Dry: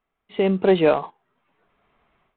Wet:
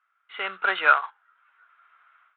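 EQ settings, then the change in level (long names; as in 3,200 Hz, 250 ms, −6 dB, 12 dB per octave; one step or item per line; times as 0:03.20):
high-pass with resonance 1,400 Hz, resonance Q 9.4
high-frequency loss of the air 64 metres
0.0 dB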